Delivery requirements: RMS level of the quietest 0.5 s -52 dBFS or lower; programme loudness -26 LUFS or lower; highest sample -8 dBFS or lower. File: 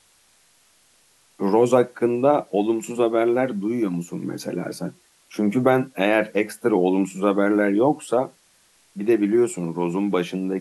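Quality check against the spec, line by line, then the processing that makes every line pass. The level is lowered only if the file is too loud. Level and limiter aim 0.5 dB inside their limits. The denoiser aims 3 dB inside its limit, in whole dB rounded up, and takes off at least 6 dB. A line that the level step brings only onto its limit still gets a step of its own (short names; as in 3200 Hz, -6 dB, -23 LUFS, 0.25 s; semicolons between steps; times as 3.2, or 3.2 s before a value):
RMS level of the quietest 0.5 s -59 dBFS: OK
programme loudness -21.5 LUFS: fail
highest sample -5.0 dBFS: fail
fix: gain -5 dB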